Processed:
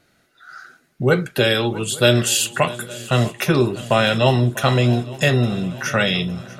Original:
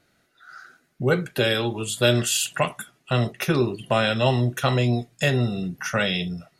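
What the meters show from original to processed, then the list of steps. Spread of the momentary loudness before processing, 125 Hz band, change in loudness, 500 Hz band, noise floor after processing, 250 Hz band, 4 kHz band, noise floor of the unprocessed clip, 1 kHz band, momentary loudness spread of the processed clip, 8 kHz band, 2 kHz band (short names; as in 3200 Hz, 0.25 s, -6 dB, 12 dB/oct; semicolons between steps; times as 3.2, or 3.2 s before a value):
6 LU, +4.5 dB, +4.5 dB, +4.5 dB, -61 dBFS, +4.5 dB, +4.5 dB, -66 dBFS, +4.5 dB, 6 LU, +4.5 dB, +4.5 dB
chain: swung echo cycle 0.861 s, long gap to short 3:1, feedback 51%, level -18.5 dB; gain +4.5 dB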